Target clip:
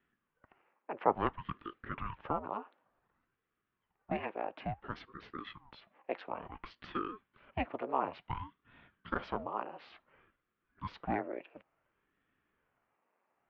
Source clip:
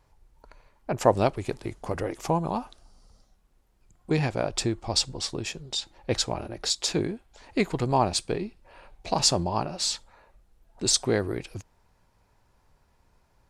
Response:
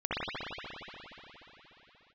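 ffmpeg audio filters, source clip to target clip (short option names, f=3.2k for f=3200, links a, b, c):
-af "highpass=f=250:t=q:w=0.5412,highpass=f=250:t=q:w=1.307,lowpass=f=2.6k:t=q:w=0.5176,lowpass=f=2.6k:t=q:w=0.7071,lowpass=f=2.6k:t=q:w=1.932,afreqshift=96,aeval=exprs='val(0)*sin(2*PI*440*n/s+440*0.8/0.57*sin(2*PI*0.57*n/s))':c=same,volume=-6dB"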